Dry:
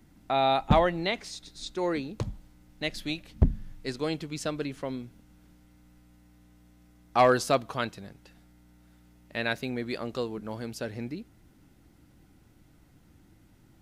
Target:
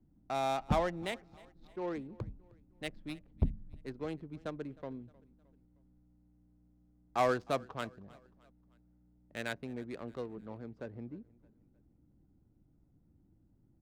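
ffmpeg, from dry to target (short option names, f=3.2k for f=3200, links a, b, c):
-filter_complex "[0:a]acrossover=split=350[a][b];[b]adynamicsmooth=sensitivity=3.5:basefreq=600[c];[a][c]amix=inputs=2:normalize=0,aecho=1:1:310|620|930:0.0708|0.0333|0.0156,volume=-8.5dB"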